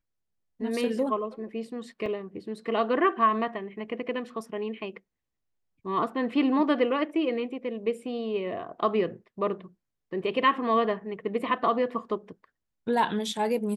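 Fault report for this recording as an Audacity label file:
2.060000	2.060000	drop-out 3.7 ms

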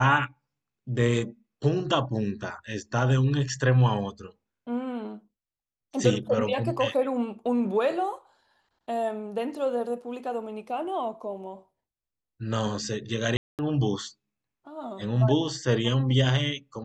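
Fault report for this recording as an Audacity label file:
13.370000	13.590000	drop-out 218 ms

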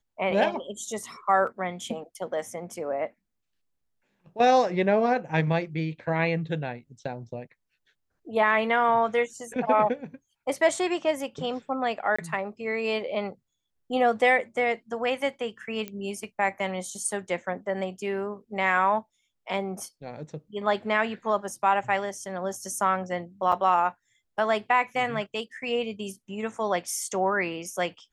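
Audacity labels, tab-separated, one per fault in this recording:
1.470000	1.470000	drop-out 2.6 ms
12.160000	12.190000	drop-out 25 ms
15.880000	15.880000	click −20 dBFS
23.520000	23.520000	drop-out 4.5 ms

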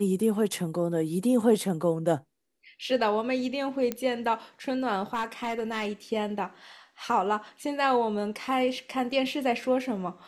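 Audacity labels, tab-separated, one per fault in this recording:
3.920000	3.920000	click −15 dBFS
5.130000	5.910000	clipping −24.5 dBFS

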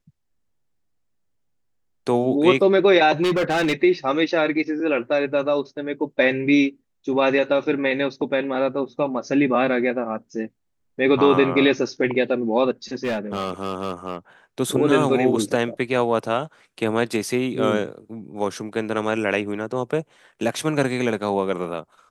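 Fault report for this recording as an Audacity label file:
3.220000	3.730000	clipping −17 dBFS
12.930000	14.160000	clipping −20 dBFS

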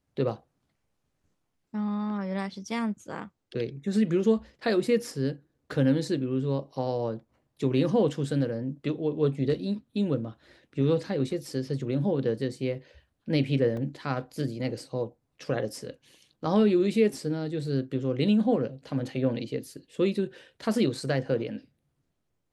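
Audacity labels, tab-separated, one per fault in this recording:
13.770000	13.770000	drop-out 2.6 ms

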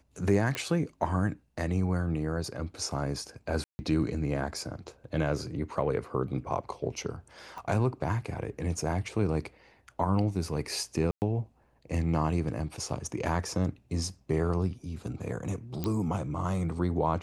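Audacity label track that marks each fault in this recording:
0.550000	0.550000	click −16 dBFS
3.640000	3.790000	drop-out 150 ms
7.580000	7.580000	click −28 dBFS
11.110000	11.220000	drop-out 109 ms
15.840000	15.840000	click −17 dBFS

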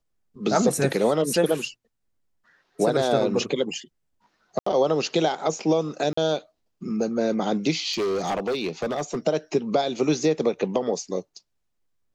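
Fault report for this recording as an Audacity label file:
4.590000	4.660000	drop-out 74 ms
6.130000	6.170000	drop-out 44 ms
7.920000	9.180000	clipping −22 dBFS

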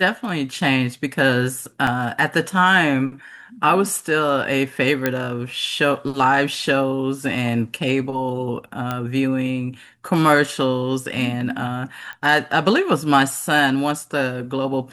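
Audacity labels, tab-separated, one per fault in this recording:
1.870000	1.870000	drop-out 3.1 ms
5.060000	5.060000	click −5 dBFS
8.910000	8.910000	click −11 dBFS
12.130000	12.130000	click −21 dBFS

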